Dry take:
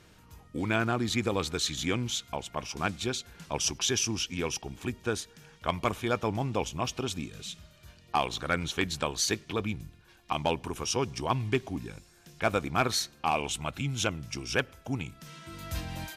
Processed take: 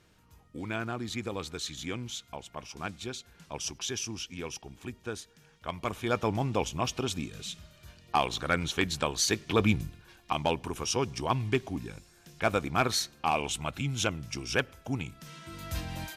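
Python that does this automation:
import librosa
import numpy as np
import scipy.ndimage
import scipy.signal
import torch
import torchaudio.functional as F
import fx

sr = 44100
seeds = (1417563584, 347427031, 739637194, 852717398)

y = fx.gain(x, sr, db=fx.line((5.74, -6.5), (6.18, 1.0), (9.31, 1.0), (9.7, 8.5), (10.37, 0.0)))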